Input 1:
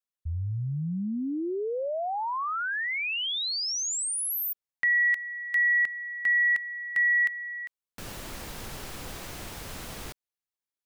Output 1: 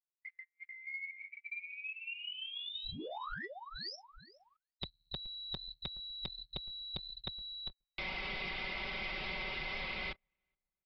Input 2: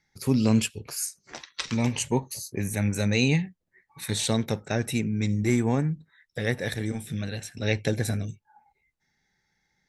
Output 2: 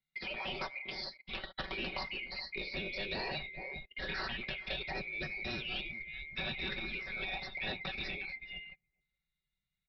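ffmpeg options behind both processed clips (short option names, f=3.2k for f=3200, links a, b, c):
-filter_complex "[0:a]afftfilt=real='real(if(lt(b,920),b+92*(1-2*mod(floor(b/92),2)),b),0)':imag='imag(if(lt(b,920),b+92*(1-2*mod(floor(b/92),2)),b),0)':win_size=2048:overlap=0.75,asubboost=boost=4:cutoff=110,aecho=1:1:5.3:0.9,asplit=2[a][b];[b]adelay=422,lowpass=f=1.1k:p=1,volume=-23dB,asplit=2[c][d];[d]adelay=422,lowpass=f=1.1k:p=1,volume=0.4,asplit=2[e][f];[f]adelay=422,lowpass=f=1.1k:p=1,volume=0.4[g];[c][e][g]amix=inputs=3:normalize=0[h];[a][h]amix=inputs=2:normalize=0,afftfilt=real='re*lt(hypot(re,im),0.178)':imag='im*lt(hypot(re,im),0.178)':win_size=1024:overlap=0.75,agate=range=-25dB:threshold=-59dB:ratio=16:release=50:detection=peak,acrossover=split=190|1100|3700[i][j][k][l];[i]acompressor=threshold=-50dB:ratio=4[m];[j]acompressor=threshold=-45dB:ratio=4[n];[k]acompressor=threshold=-46dB:ratio=4[o];[l]acompressor=threshold=-47dB:ratio=4[p];[m][n][o][p]amix=inputs=4:normalize=0,aresample=11025,asoftclip=type=tanh:threshold=-34dB,aresample=44100,volume=4.5dB"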